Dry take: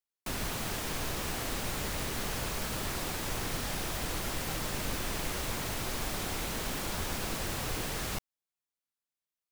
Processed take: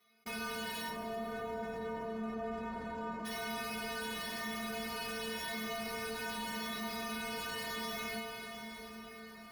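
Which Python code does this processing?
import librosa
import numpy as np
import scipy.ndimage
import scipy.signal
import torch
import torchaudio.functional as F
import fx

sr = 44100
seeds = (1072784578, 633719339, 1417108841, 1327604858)

y = fx.spec_ripple(x, sr, per_octave=1.2, drift_hz=0.88, depth_db=12)
y = np.repeat(scipy.signal.resample_poly(y, 1, 6), 6)[:len(y)]
y = fx.lowpass(y, sr, hz=1100.0, slope=24, at=(0.89, 3.25))
y = 10.0 ** (-33.5 / 20.0) * (np.abs((y / 10.0 ** (-33.5 / 20.0) + 3.0) % 4.0 - 2.0) - 1.0)
y = scipy.signal.sosfilt(scipy.signal.butter(2, 49.0, 'highpass', fs=sr, output='sos'), y)
y = fx.notch(y, sr, hz=860.0, q=12.0)
y = fx.stiff_resonator(y, sr, f0_hz=220.0, decay_s=0.51, stiffness=0.008)
y = fx.rev_plate(y, sr, seeds[0], rt60_s=4.8, hf_ratio=0.8, predelay_ms=0, drr_db=7.0)
y = fx.env_flatten(y, sr, amount_pct=50)
y = F.gain(torch.from_numpy(y), 12.0).numpy()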